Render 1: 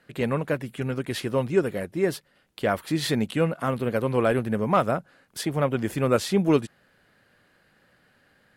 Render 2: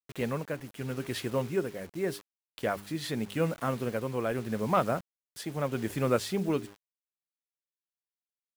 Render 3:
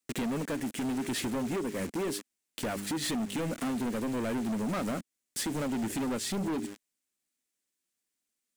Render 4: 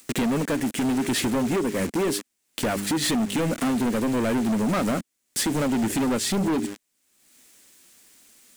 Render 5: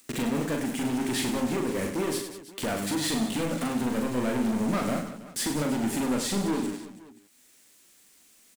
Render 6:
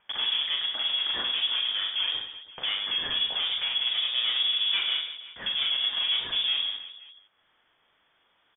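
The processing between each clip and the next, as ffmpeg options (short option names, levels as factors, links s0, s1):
-af "bandreject=f=100.7:t=h:w=4,bandreject=f=201.4:t=h:w=4,bandreject=f=302.1:t=h:w=4,bandreject=f=402.8:t=h:w=4,acrusher=bits=6:mix=0:aa=0.000001,tremolo=f=0.83:d=0.42,volume=0.596"
-af "equalizer=f=125:t=o:w=1:g=-5,equalizer=f=250:t=o:w=1:g=12,equalizer=f=1000:t=o:w=1:g=-4,equalizer=f=2000:t=o:w=1:g=4,equalizer=f=8000:t=o:w=1:g=9,acompressor=threshold=0.0282:ratio=5,asoftclip=type=hard:threshold=0.015,volume=2.24"
-af "acompressor=mode=upward:threshold=0.00631:ratio=2.5,volume=2.66"
-af "aecho=1:1:40|100|190|325|527.5:0.631|0.398|0.251|0.158|0.1,volume=0.501"
-af "lowpass=f=3100:t=q:w=0.5098,lowpass=f=3100:t=q:w=0.6013,lowpass=f=3100:t=q:w=0.9,lowpass=f=3100:t=q:w=2.563,afreqshift=-3600"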